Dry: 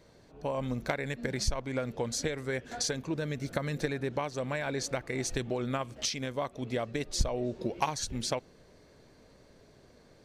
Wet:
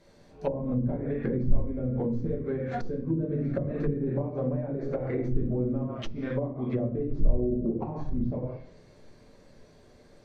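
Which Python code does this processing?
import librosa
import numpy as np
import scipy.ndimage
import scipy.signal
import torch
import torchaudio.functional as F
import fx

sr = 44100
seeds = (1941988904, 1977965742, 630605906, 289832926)

y = fx.tracing_dist(x, sr, depth_ms=0.022)
y = np.clip(y, -10.0 ** (-25.0 / 20.0), 10.0 ** (-25.0 / 20.0))
y = fx.peak_eq(y, sr, hz=6800.0, db=7.0, octaves=2.7, at=(1.53, 2.94))
y = fx.room_shoebox(y, sr, seeds[0], volume_m3=110.0, walls='mixed', distance_m=1.2)
y = fx.noise_reduce_blind(y, sr, reduce_db=6)
y = fx.env_lowpass_down(y, sr, base_hz=330.0, full_db=-24.5)
y = F.gain(torch.from_numpy(y), 2.5).numpy()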